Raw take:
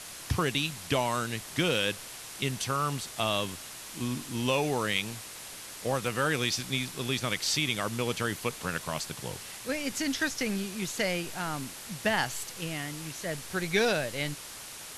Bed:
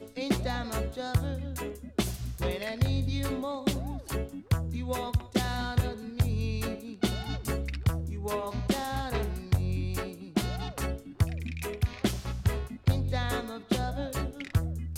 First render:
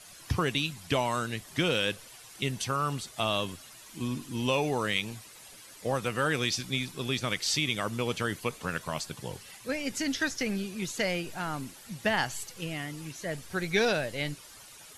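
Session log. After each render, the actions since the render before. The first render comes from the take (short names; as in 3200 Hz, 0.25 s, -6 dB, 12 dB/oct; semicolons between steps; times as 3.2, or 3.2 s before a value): denoiser 11 dB, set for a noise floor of -44 dBFS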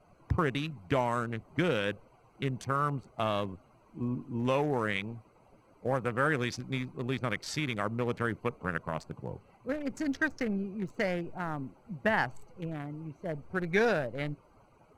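Wiener smoothing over 25 samples; resonant high shelf 2400 Hz -7.5 dB, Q 1.5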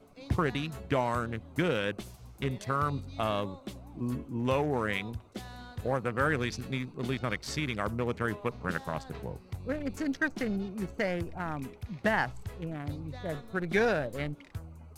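add bed -14 dB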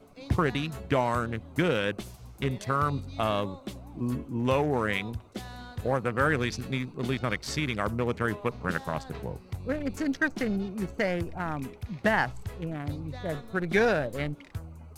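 gain +3 dB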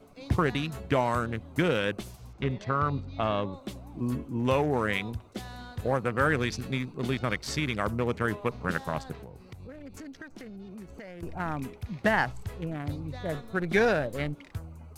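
2.33–3.53 air absorption 150 m; 9.12–11.23 compressor 10:1, threshold -40 dBFS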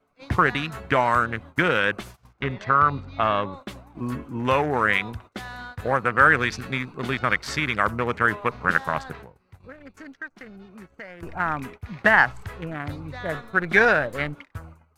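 gate -43 dBFS, range -18 dB; bell 1500 Hz +12 dB 1.8 oct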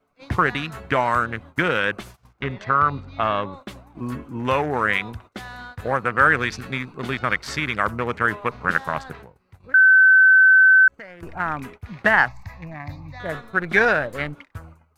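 9.74–10.88 bleep 1530 Hz -9 dBFS; 12.28–13.2 fixed phaser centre 2100 Hz, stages 8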